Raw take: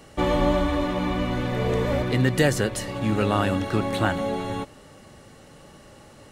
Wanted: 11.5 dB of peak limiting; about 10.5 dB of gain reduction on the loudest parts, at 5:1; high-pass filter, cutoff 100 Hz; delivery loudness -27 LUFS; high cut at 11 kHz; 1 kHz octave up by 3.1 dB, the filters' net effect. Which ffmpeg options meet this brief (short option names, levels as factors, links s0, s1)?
-af "highpass=100,lowpass=11000,equalizer=f=1000:t=o:g=4,acompressor=threshold=0.0447:ratio=5,volume=2.82,alimiter=limit=0.119:level=0:latency=1"